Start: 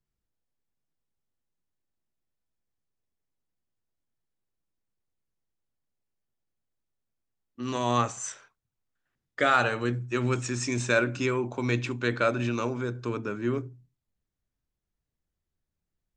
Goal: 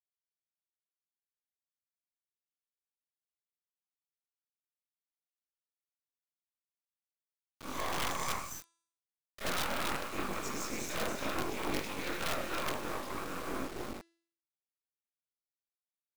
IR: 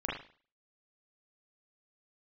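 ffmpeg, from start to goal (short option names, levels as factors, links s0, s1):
-filter_complex "[0:a]highshelf=f=3100:g=10,aecho=1:1:72.89|279.9:0.316|0.631,tremolo=f=170:d=0.667,acrossover=split=300[s0][s1];[s1]acompressor=threshold=0.0501:ratio=4[s2];[s0][s2]amix=inputs=2:normalize=0[s3];[1:a]atrim=start_sample=2205[s4];[s3][s4]afir=irnorm=-1:irlink=0,afftfilt=real='hypot(re,im)*cos(2*PI*random(0))':imag='hypot(re,im)*sin(2*PI*random(1))':win_size=512:overlap=0.75,highpass=230,equalizer=f=290:t=q:w=4:g=-3,equalizer=f=430:t=q:w=4:g=-5,equalizer=f=1100:t=q:w=4:g=7,equalizer=f=1700:t=q:w=4:g=-8,equalizer=f=2800:t=q:w=4:g=-9,lowpass=f=7800:w=0.5412,lowpass=f=7800:w=1.3066,flanger=delay=20:depth=3.1:speed=0.77,acrossover=split=290[s5][s6];[s6]aeval=exprs='(mod(23.7*val(0)+1,2)-1)/23.7':c=same[s7];[s5][s7]amix=inputs=2:normalize=0,acrusher=bits=5:dc=4:mix=0:aa=0.000001,bandreject=f=335.5:t=h:w=4,bandreject=f=671:t=h:w=4,bandreject=f=1006.5:t=h:w=4,bandreject=f=1342:t=h:w=4,bandreject=f=1677.5:t=h:w=4,bandreject=f=2013:t=h:w=4,bandreject=f=2348.5:t=h:w=4,bandreject=f=2684:t=h:w=4,bandreject=f=3019.5:t=h:w=4,bandreject=f=3355:t=h:w=4,bandreject=f=3690.5:t=h:w=4,bandreject=f=4026:t=h:w=4,bandreject=f=4361.5:t=h:w=4,bandreject=f=4697:t=h:w=4,bandreject=f=5032.5:t=h:w=4,bandreject=f=5368:t=h:w=4,bandreject=f=5703.5:t=h:w=4,bandreject=f=6039:t=h:w=4,bandreject=f=6374.5:t=h:w=4,bandreject=f=6710:t=h:w=4,bandreject=f=7045.5:t=h:w=4,bandreject=f=7381:t=h:w=4,bandreject=f=7716.5:t=h:w=4,bandreject=f=8052:t=h:w=4,bandreject=f=8387.5:t=h:w=4,bandreject=f=8723:t=h:w=4,bandreject=f=9058.5:t=h:w=4,bandreject=f=9394:t=h:w=4,bandreject=f=9729.5:t=h:w=4,bandreject=f=10065:t=h:w=4,volume=1.58"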